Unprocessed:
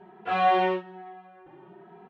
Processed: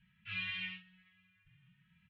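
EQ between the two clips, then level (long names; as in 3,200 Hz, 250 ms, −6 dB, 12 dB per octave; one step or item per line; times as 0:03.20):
elliptic band-stop filter 110–2,500 Hz, stop band 70 dB
high-frequency loss of the air 230 metres
high-shelf EQ 3,600 Hz −7.5 dB
+4.5 dB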